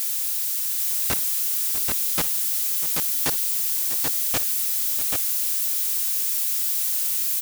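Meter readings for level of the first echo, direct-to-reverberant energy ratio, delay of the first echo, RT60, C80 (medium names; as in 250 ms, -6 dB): -18.0 dB, no reverb, 56 ms, no reverb, no reverb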